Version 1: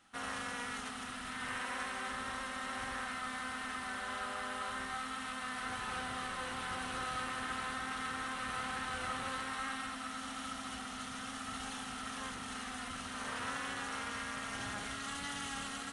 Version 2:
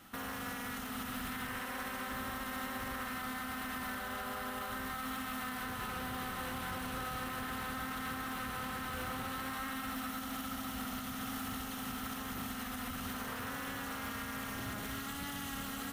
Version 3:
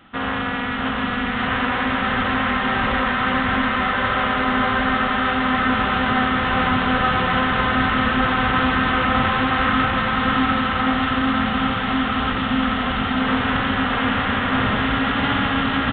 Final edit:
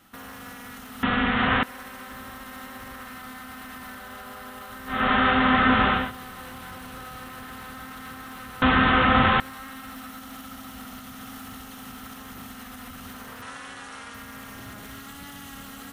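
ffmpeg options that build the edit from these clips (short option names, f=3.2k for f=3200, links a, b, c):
-filter_complex "[2:a]asplit=3[a][b][c];[1:a]asplit=5[d][e][f][g][h];[d]atrim=end=1.032[i];[a]atrim=start=1.028:end=1.632[j];[e]atrim=start=1.628:end=5.1[k];[b]atrim=start=4.86:end=6.12[l];[f]atrim=start=5.88:end=8.622[m];[c]atrim=start=8.618:end=9.402[n];[g]atrim=start=9.398:end=13.422[o];[0:a]atrim=start=13.418:end=14.142[p];[h]atrim=start=14.138[q];[i][j]acrossfade=d=0.004:c1=hsin:c2=hsin[r];[r][k]acrossfade=d=0.004:c1=hsin:c2=hsin[s];[s][l]acrossfade=d=0.24:c1=tri:c2=tri[t];[t][m]acrossfade=d=0.24:c1=tri:c2=tri[u];[u][n]acrossfade=d=0.004:c1=hsin:c2=hsin[v];[v][o]acrossfade=d=0.004:c1=hsin:c2=hsin[w];[w][p]acrossfade=d=0.004:c1=hsin:c2=hsin[x];[x][q]acrossfade=d=0.004:c1=hsin:c2=hsin"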